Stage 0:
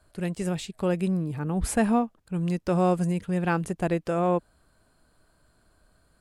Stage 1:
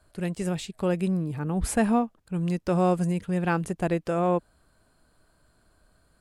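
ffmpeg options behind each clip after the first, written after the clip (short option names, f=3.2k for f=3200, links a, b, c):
-af anull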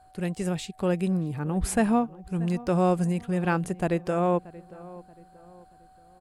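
-filter_complex "[0:a]asplit=2[a][b];[b]adelay=630,lowpass=f=1.9k:p=1,volume=-19dB,asplit=2[c][d];[d]adelay=630,lowpass=f=1.9k:p=1,volume=0.41,asplit=2[e][f];[f]adelay=630,lowpass=f=1.9k:p=1,volume=0.41[g];[a][c][e][g]amix=inputs=4:normalize=0,aeval=exprs='val(0)+0.002*sin(2*PI*750*n/s)':c=same"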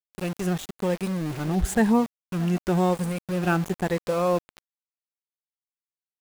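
-af "afftfilt=real='re*pow(10,9/40*sin(2*PI*(0.96*log(max(b,1)*sr/1024/100)/log(2)-(0.97)*(pts-256)/sr)))':imag='im*pow(10,9/40*sin(2*PI*(0.96*log(max(b,1)*sr/1024/100)/log(2)-(0.97)*(pts-256)/sr)))':win_size=1024:overlap=0.75,aeval=exprs='val(0)*gte(abs(val(0)),0.0266)':c=same"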